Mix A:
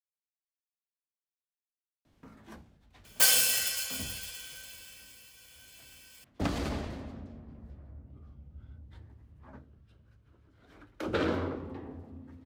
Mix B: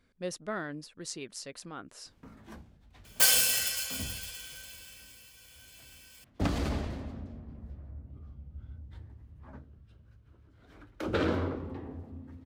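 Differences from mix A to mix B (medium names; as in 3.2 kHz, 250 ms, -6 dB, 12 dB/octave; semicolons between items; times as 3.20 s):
speech: unmuted; master: add bass shelf 130 Hz +5.5 dB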